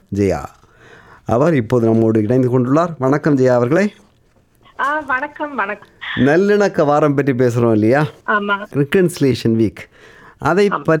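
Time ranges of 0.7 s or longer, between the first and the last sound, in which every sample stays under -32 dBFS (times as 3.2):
3.91–4.79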